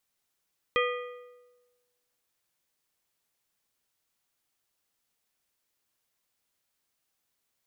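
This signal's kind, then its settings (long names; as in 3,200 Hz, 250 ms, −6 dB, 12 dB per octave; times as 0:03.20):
struck metal plate, lowest mode 491 Hz, modes 5, decay 1.23 s, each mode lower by 2 dB, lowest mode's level −24 dB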